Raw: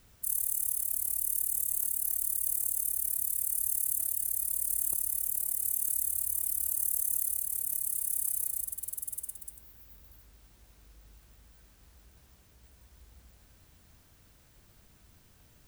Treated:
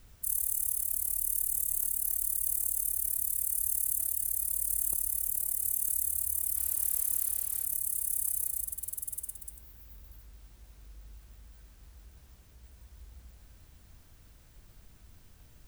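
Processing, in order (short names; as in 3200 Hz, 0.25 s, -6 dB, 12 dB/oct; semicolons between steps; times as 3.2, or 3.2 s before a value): low shelf 63 Hz +11.5 dB; 6.56–7.66 sample gate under -44.5 dBFS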